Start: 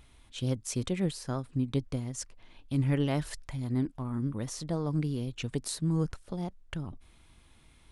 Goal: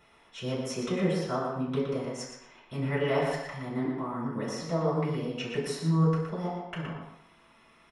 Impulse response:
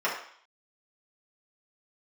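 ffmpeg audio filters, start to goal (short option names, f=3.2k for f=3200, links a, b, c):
-filter_complex "[0:a]asplit=2[a][b];[b]adelay=118,lowpass=f=4.2k:p=1,volume=-4dB,asplit=2[c][d];[d]adelay=118,lowpass=f=4.2k:p=1,volume=0.3,asplit=2[e][f];[f]adelay=118,lowpass=f=4.2k:p=1,volume=0.3,asplit=2[g][h];[h]adelay=118,lowpass=f=4.2k:p=1,volume=0.3[i];[a][c][e][g][i]amix=inputs=5:normalize=0[j];[1:a]atrim=start_sample=2205[k];[j][k]afir=irnorm=-1:irlink=0,volume=-5.5dB"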